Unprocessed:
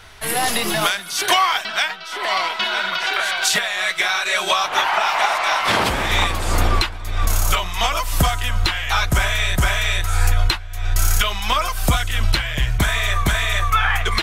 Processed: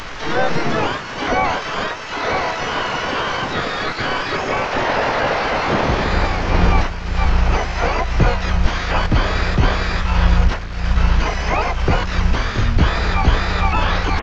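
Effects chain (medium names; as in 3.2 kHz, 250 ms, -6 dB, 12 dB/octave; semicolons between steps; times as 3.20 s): one-bit delta coder 16 kbps, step -27.5 dBFS; harmony voices -7 st 0 dB, -5 st -1 dB, +12 st -2 dB; trim -1 dB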